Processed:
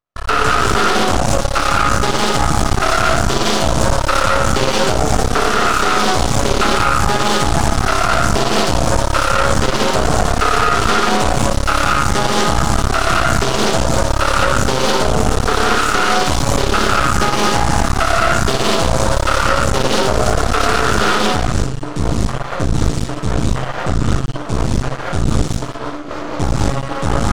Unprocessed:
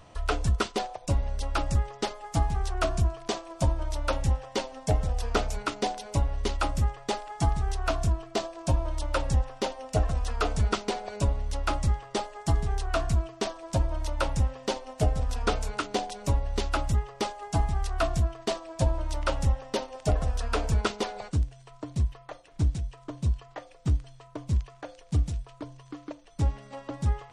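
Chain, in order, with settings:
peak hold with a decay on every bin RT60 0.70 s
noise gate −40 dBFS, range −46 dB
low-shelf EQ 90 Hz −9 dB
reverb whose tail is shaped and stops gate 260 ms rising, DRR −6 dB
half-wave rectification
parametric band 1,300 Hz +5.5 dB 0.51 octaves
boost into a limiter +14.5 dB
highs frequency-modulated by the lows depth 0.33 ms
level −1 dB

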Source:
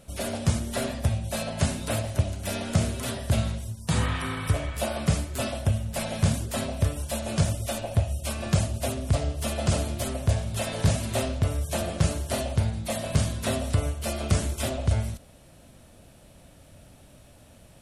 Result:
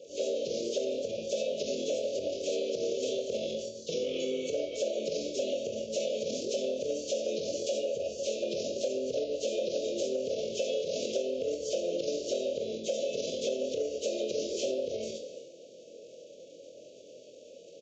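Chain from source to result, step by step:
hearing-aid frequency compression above 2,900 Hz 1.5 to 1
transient designer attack −5 dB, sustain +6 dB
inverse Chebyshev band-stop filter 790–1,900 Hz, stop band 40 dB
high-shelf EQ 4,100 Hz −6.5 dB
flutter between parallel walls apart 4 metres, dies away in 0.23 s
downsampling to 16,000 Hz
brickwall limiter −22.5 dBFS, peak gain reduction 9 dB
high-pass with resonance 490 Hz, resonance Q 5.2
on a send at −11 dB: convolution reverb, pre-delay 3 ms
on the sum: downward compressor, threshold −30 dBFS, peak gain reduction 8.5 dB
level +2 dB

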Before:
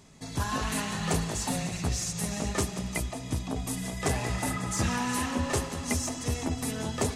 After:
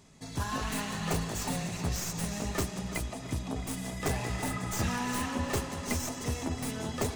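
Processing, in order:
stylus tracing distortion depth 0.047 ms
tape delay 335 ms, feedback 79%, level −11.5 dB, low-pass 3,700 Hz
level −3 dB

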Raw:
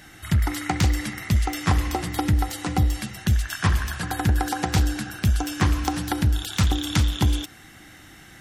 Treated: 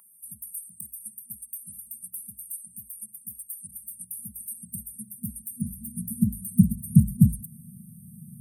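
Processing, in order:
brick-wall band-stop 240–8,500 Hz
high-pass filter sweep 1,100 Hz → 160 Hz, 0:03.57–0:06.98
hum removal 407.5 Hz, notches 35
level +4.5 dB

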